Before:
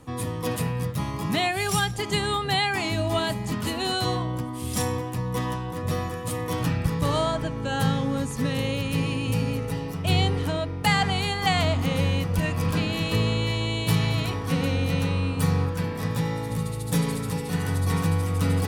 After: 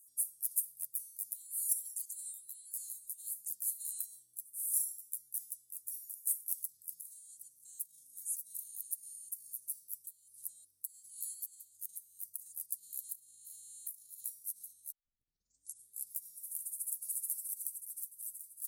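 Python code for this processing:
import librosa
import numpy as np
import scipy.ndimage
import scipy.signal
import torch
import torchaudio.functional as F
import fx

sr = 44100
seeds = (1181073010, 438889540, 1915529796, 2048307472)

y = fx.edit(x, sr, fx.tape_start(start_s=14.92, length_s=1.21), tone=tone)
y = fx.over_compress(y, sr, threshold_db=-26.0, ratio=-0.5)
y = scipy.signal.sosfilt(scipy.signal.cheby2(4, 70, 2700.0, 'highpass', fs=sr, output='sos'), y)
y = y * 10.0 ** (7.5 / 20.0)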